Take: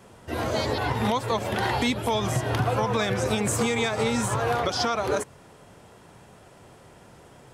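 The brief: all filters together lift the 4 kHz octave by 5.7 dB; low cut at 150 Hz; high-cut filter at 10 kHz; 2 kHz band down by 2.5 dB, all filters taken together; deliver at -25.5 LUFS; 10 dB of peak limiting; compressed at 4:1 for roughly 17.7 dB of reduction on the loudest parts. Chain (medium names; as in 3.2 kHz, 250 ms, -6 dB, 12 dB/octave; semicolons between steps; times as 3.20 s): high-pass 150 Hz; low-pass 10 kHz; peaking EQ 2 kHz -5.5 dB; peaking EQ 4 kHz +8.5 dB; compression 4:1, threshold -42 dBFS; trim +21 dB; peak limiter -15.5 dBFS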